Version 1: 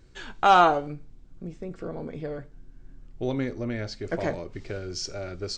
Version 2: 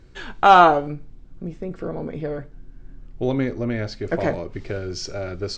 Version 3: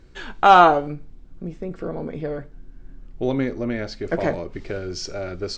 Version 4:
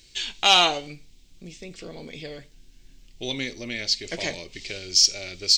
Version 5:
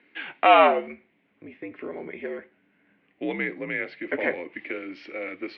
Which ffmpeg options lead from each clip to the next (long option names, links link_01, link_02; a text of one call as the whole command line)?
ffmpeg -i in.wav -af "lowpass=frequency=3700:poles=1,volume=6dB" out.wav
ffmpeg -i in.wav -af "equalizer=frequency=110:width=4.4:gain=-8" out.wav
ffmpeg -i in.wav -af "aexciter=amount=12.3:drive=7.2:freq=2200,volume=-10.5dB" out.wav
ffmpeg -i in.wav -af "highpass=frequency=340:width_type=q:width=0.5412,highpass=frequency=340:width_type=q:width=1.307,lowpass=frequency=2200:width_type=q:width=0.5176,lowpass=frequency=2200:width_type=q:width=0.7071,lowpass=frequency=2200:width_type=q:width=1.932,afreqshift=-72,volume=6.5dB" out.wav